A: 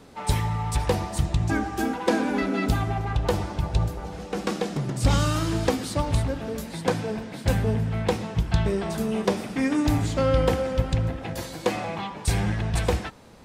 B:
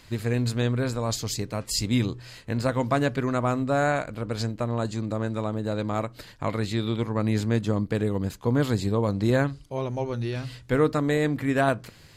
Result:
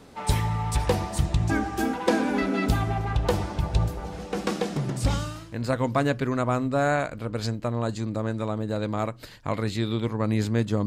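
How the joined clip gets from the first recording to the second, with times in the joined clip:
A
5.33 s: go over to B from 2.29 s, crossfade 0.80 s quadratic

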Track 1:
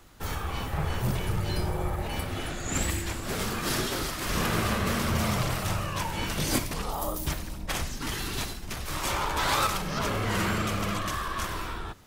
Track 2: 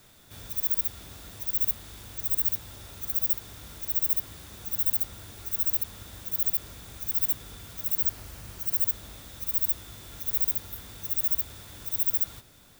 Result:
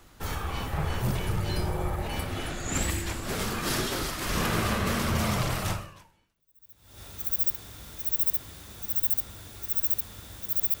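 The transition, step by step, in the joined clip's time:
track 1
6.36 s: go over to track 2 from 2.19 s, crossfade 1.30 s exponential

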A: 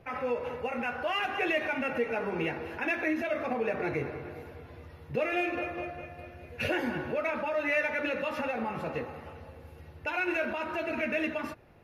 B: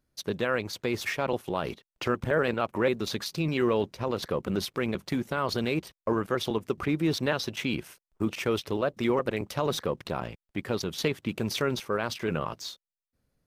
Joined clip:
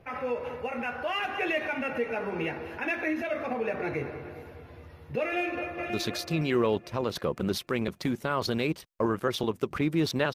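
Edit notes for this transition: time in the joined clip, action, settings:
A
5.25–5.90 s: echo throw 530 ms, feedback 30%, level -6 dB
5.90 s: go over to B from 2.97 s

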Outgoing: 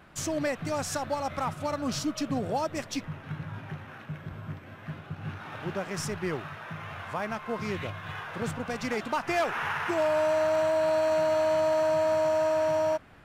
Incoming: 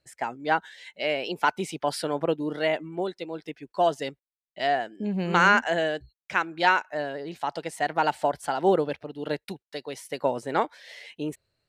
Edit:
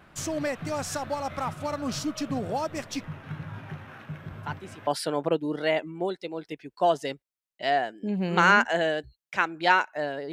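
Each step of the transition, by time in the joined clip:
outgoing
4.43 s: add incoming from 1.40 s 0.44 s -13 dB
4.87 s: go over to incoming from 1.84 s

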